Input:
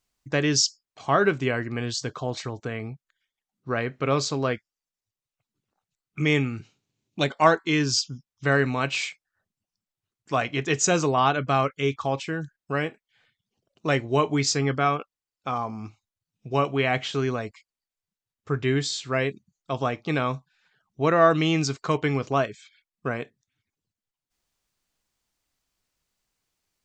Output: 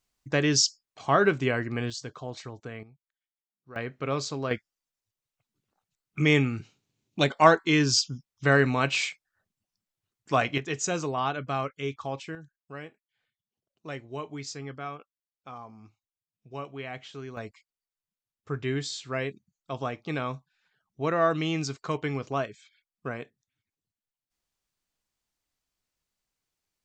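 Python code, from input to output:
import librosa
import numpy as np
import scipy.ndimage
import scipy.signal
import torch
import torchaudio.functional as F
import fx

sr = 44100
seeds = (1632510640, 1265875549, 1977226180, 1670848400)

y = fx.gain(x, sr, db=fx.steps((0.0, -1.0), (1.9, -8.0), (2.83, -19.0), (3.76, -6.0), (4.51, 0.5), (10.58, -7.5), (12.35, -14.5), (17.37, -6.0)))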